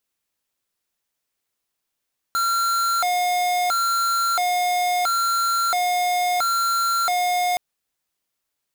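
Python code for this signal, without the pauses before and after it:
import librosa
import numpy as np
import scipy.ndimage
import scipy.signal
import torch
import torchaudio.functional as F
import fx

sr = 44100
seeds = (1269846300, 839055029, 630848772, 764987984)

y = fx.siren(sr, length_s=5.22, kind='hi-lo', low_hz=717.0, high_hz=1370.0, per_s=0.74, wave='square', level_db=-21.0)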